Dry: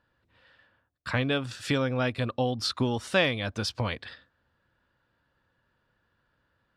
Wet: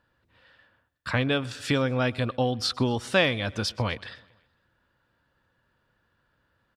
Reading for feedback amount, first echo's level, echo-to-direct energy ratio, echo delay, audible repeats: 59%, -24.0 dB, -22.0 dB, 126 ms, 3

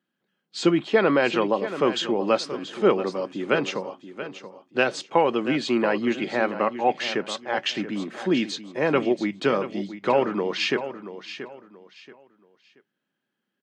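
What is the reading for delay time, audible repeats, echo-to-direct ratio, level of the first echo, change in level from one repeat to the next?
680 ms, 3, -11.5 dB, -12.0 dB, -11.0 dB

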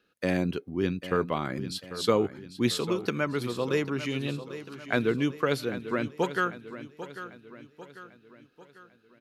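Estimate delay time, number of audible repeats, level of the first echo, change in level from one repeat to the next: 795 ms, 4, -13.0 dB, -6.5 dB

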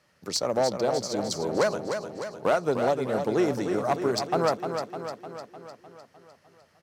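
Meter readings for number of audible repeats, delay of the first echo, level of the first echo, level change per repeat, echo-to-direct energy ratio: 7, 303 ms, -7.0 dB, -4.5 dB, -5.0 dB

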